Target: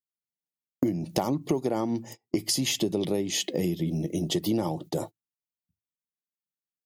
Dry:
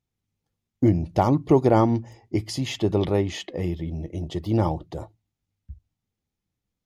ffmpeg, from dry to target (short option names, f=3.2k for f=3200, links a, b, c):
-af "highpass=f=150:w=0.5412,highpass=f=150:w=1.3066,aemphasis=mode=production:type=50fm,agate=range=-31dB:threshold=-42dB:ratio=16:detection=peak,asetnsamples=n=441:p=0,asendcmd='2.71 equalizer g -13;4.29 equalizer g -5',equalizer=f=1.2k:w=0.78:g=-4,acompressor=threshold=-31dB:ratio=16,volume=8.5dB"